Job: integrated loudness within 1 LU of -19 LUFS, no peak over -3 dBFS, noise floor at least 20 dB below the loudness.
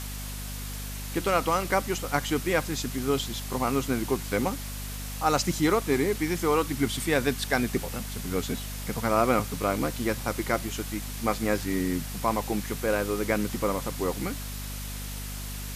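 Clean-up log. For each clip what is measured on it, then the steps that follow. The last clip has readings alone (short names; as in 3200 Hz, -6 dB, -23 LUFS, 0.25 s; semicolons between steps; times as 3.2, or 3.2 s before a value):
hum 50 Hz; harmonics up to 250 Hz; hum level -34 dBFS; noise floor -36 dBFS; noise floor target -49 dBFS; loudness -28.5 LUFS; peak -9.5 dBFS; loudness target -19.0 LUFS
-> notches 50/100/150/200/250 Hz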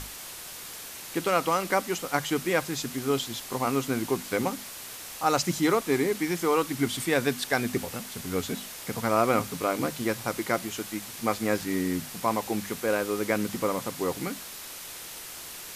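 hum none; noise floor -41 dBFS; noise floor target -49 dBFS
-> denoiser 8 dB, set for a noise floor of -41 dBFS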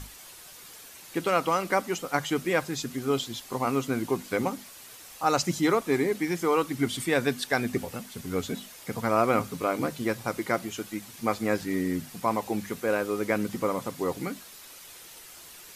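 noise floor -48 dBFS; noise floor target -49 dBFS
-> denoiser 6 dB, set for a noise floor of -48 dBFS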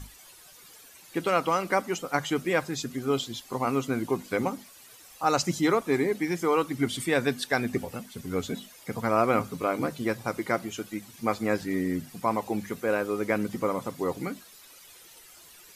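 noise floor -52 dBFS; loudness -28.5 LUFS; peak -9.5 dBFS; loudness target -19.0 LUFS
-> gain +9.5 dB; limiter -3 dBFS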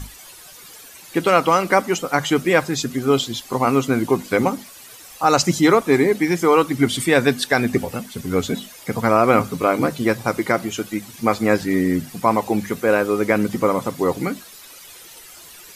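loudness -19.5 LUFS; peak -3.0 dBFS; noise floor -42 dBFS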